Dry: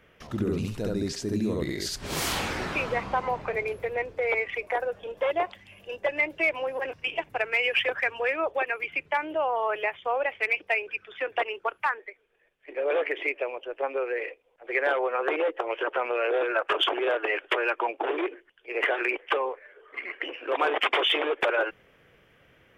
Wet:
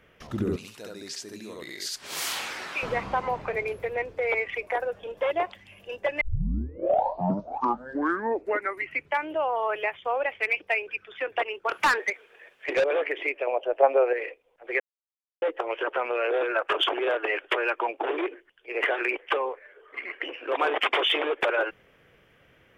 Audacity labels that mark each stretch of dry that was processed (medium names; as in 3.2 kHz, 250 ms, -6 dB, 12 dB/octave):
0.560000	2.830000	high-pass 1.4 kHz 6 dB/octave
6.210000	6.210000	tape start 2.95 s
11.690000	12.840000	overdrive pedal drive 25 dB, tone 5 kHz, clips at -14 dBFS
13.470000	14.130000	peaking EQ 670 Hz +14.5 dB 0.96 oct
14.800000	15.420000	mute